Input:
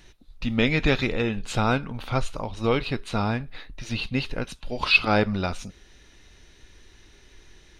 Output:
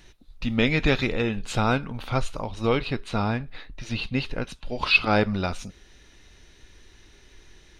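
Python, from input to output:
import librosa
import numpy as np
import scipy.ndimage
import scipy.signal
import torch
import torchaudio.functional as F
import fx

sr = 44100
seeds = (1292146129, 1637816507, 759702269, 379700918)

y = fx.high_shelf(x, sr, hz=7400.0, db=-6.0, at=(2.76, 5.13))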